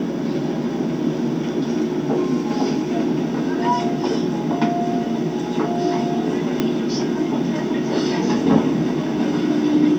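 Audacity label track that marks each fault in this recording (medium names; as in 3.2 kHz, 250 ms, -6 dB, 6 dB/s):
6.600000	6.600000	pop -6 dBFS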